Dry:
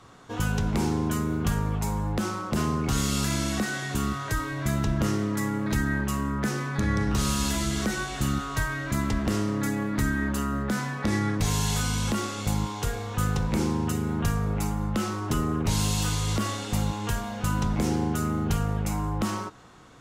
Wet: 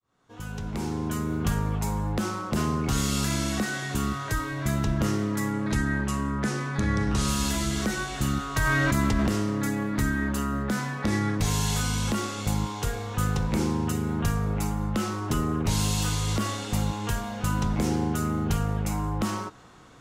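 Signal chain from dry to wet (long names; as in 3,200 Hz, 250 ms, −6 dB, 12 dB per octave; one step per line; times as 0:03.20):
fade in at the beginning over 1.48 s
0:05.52–0:07.28: low-pass filter 11,000 Hz 24 dB per octave
0:08.56–0:09.27: envelope flattener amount 100%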